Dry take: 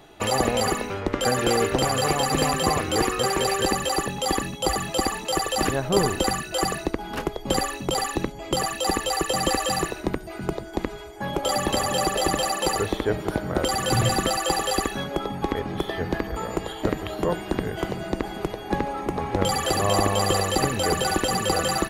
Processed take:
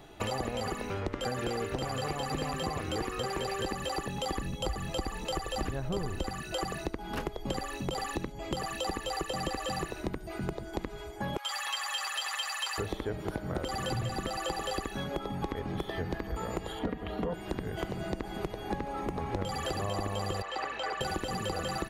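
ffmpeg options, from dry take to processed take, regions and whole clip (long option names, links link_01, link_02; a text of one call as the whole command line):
ffmpeg -i in.wav -filter_complex "[0:a]asettb=1/sr,asplit=3[link_01][link_02][link_03];[link_01]atrim=end=4.354[link_04];[link_02]atrim=start=4.35:end=6.29,asetpts=PTS-STARTPTS,afade=type=in:duration=0.004:curve=qsin,afade=type=out:start_time=1.936:duration=0.004:curve=qsin,lowshelf=frequency=100:gain=10.5,aeval=exprs='val(0)+0.00501*sin(2*PI*510*n/s)':channel_layout=same[link_05];[link_03]atrim=start=6.286[link_06];[link_04][link_05]acrossfade=duration=0.004:curve1=hsin:curve2=qsin[link_07];[link_07][link_06]acrossfade=duration=0.004:curve1=qsin:curve2=hsin,asettb=1/sr,asplit=3[link_08][link_09][link_10];[link_08]atrim=end=11.374[link_11];[link_09]atrim=start=11.37:end=12.78,asetpts=PTS-STARTPTS,afade=type=in:duration=0.004:curve=qsin,afade=type=out:start_time=1.406:duration=0.004:curve=qsin,highpass=frequency=1100:width=0.5412,highpass=frequency=1100:width=1.3066,aecho=1:1:7.3:0.85,atrim=end_sample=62181[link_12];[link_10]atrim=start=12.776[link_13];[link_11][link_12]acrossfade=duration=0.004:curve1=hsin:curve2=qsin[link_14];[link_14][link_13]acrossfade=duration=0.004:curve1=qsin:curve2=hsin,asettb=1/sr,asplit=3[link_15][link_16][link_17];[link_15]atrim=end=16.794[link_18];[link_16]atrim=start=16.79:end=17.34,asetpts=PTS-STARTPTS,afade=type=in:duration=0.004:curve=qsin,afade=type=out:start_time=0.546:duration=0.004:curve=qsin,highpass=50,bass=frequency=250:gain=2,treble=frequency=4000:gain=-13,aecho=1:1:4.2:0.72,atrim=end_sample=24255[link_19];[link_17]atrim=start=17.336[link_20];[link_18][link_19]acrossfade=duration=0.004:curve1=hsin:curve2=qsin[link_21];[link_21][link_20]acrossfade=duration=0.004:curve1=qsin:curve2=hsin,asettb=1/sr,asplit=3[link_22][link_23][link_24];[link_22]atrim=end=20.424[link_25];[link_23]atrim=start=20.42:end=21.01,asetpts=PTS-STARTPTS,afade=type=in:duration=0.004:curve=qsin,afade=type=out:start_time=0.586:duration=0.004:curve=qsin,highpass=780,lowpass=2800,aeval=exprs='val(0)+0.00112*(sin(2*PI*50*n/s)+sin(2*PI*2*50*n/s)/2+sin(2*PI*3*50*n/s)/3+sin(2*PI*4*50*n/s)/4+sin(2*PI*5*50*n/s)/5)':channel_layout=same[link_26];[link_24]atrim=start=21.006[link_27];[link_25][link_26]acrossfade=duration=0.004:curve1=hsin:curve2=qsin[link_28];[link_28][link_27]acrossfade=duration=0.004:curve1=qsin:curve2=hsin,acrossover=split=5400[link_29][link_30];[link_30]acompressor=threshold=-38dB:ratio=4:attack=1:release=60[link_31];[link_29][link_31]amix=inputs=2:normalize=0,lowshelf=frequency=160:gain=6,acompressor=threshold=-27dB:ratio=6,volume=-3.5dB" out.wav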